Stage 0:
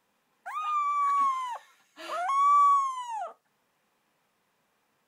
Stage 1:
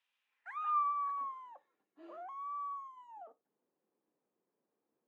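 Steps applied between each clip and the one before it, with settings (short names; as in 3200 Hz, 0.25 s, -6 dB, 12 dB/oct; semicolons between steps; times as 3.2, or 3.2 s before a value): band-pass sweep 2900 Hz -> 350 Hz, 0.2–1.52; gain -3 dB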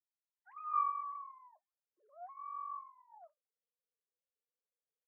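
sine-wave speech; low-pass opened by the level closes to 950 Hz, open at -33 dBFS; doubler 14 ms -13.5 dB; gain -3 dB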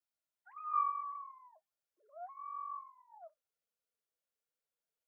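small resonant body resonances 640/1400 Hz, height 9 dB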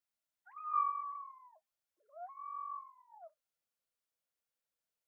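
bell 410 Hz -8.5 dB 0.33 oct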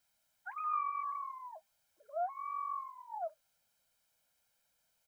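comb 1.3 ms, depth 62%; compressor 6:1, threshold -44 dBFS, peak gain reduction 9 dB; gain +12 dB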